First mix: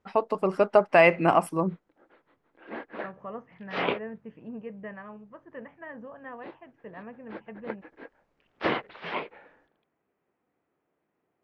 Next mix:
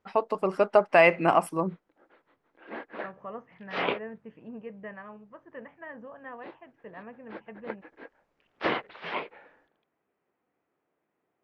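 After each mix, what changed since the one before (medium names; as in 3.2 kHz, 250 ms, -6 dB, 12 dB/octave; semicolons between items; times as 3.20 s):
master: add bass shelf 270 Hz -5 dB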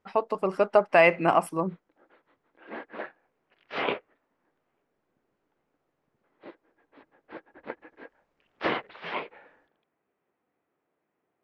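second voice: muted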